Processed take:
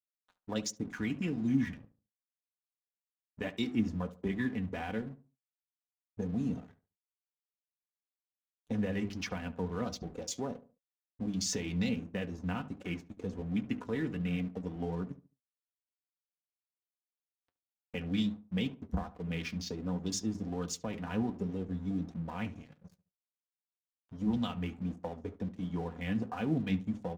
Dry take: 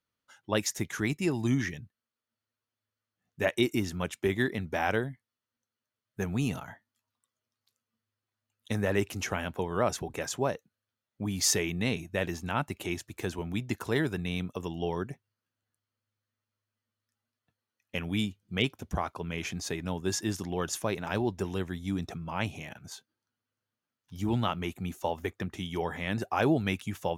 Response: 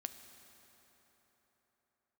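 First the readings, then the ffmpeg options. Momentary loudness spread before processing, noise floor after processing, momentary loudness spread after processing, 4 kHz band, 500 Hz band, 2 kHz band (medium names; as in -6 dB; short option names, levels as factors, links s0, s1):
9 LU, under -85 dBFS, 8 LU, -7.0 dB, -8.5 dB, -9.0 dB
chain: -filter_complex "[0:a]lowpass=f=6700:w=0.5412,lowpass=f=6700:w=1.3066,aemphasis=mode=production:type=75fm,bandreject=f=50:t=h:w=6,bandreject=f=100:t=h:w=6,bandreject=f=150:t=h:w=6,bandreject=f=200:t=h:w=6,bandreject=f=250:t=h:w=6,bandreject=f=300:t=h:w=6,bandreject=f=350:t=h:w=6,bandreject=f=400:t=h:w=6,afwtdn=0.0158,highshelf=f=2300:g=-12,aecho=1:1:4.1:0.65,acrossover=split=1400[s0][s1];[s0]acompressor=mode=upward:threshold=0.00631:ratio=2.5[s2];[s1]alimiter=level_in=1.26:limit=0.0631:level=0:latency=1:release=280,volume=0.794[s3];[s2][s3]amix=inputs=2:normalize=0,acrossover=split=250|3000[s4][s5][s6];[s5]acompressor=threshold=0.00794:ratio=4[s7];[s4][s7][s6]amix=inputs=3:normalize=0,aeval=exprs='sgn(val(0))*max(abs(val(0))-0.00168,0)':c=same,flanger=delay=4.8:depth=6.5:regen=62:speed=1.4:shape=triangular,asplit=2[s8][s9];[s9]adelay=71,lowpass=f=1300:p=1,volume=0.188,asplit=2[s10][s11];[s11]adelay=71,lowpass=f=1300:p=1,volume=0.33,asplit=2[s12][s13];[s13]adelay=71,lowpass=f=1300:p=1,volume=0.33[s14];[s8][s10][s12][s14]amix=inputs=4:normalize=0,volume=2"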